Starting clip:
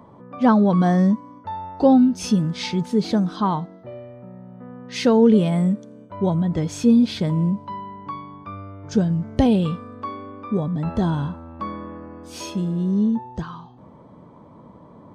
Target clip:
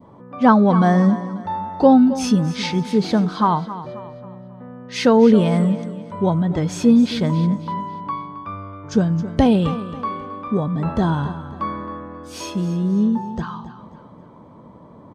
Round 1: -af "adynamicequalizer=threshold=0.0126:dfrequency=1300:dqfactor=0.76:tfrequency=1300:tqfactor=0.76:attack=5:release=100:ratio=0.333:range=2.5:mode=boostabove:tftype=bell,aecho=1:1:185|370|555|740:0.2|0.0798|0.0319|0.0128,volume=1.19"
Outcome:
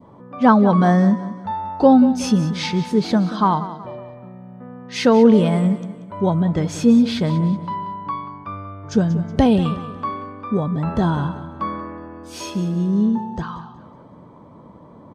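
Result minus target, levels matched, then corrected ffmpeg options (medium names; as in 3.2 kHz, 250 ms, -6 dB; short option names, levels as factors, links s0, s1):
echo 84 ms early
-af "adynamicequalizer=threshold=0.0126:dfrequency=1300:dqfactor=0.76:tfrequency=1300:tqfactor=0.76:attack=5:release=100:ratio=0.333:range=2.5:mode=boostabove:tftype=bell,aecho=1:1:269|538|807|1076:0.2|0.0798|0.0319|0.0128,volume=1.19"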